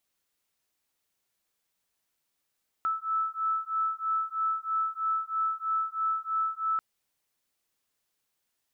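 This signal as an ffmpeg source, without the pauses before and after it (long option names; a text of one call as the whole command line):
ffmpeg -f lavfi -i "aevalsrc='0.0316*(sin(2*PI*1310*t)+sin(2*PI*1313.1*t))':duration=3.94:sample_rate=44100" out.wav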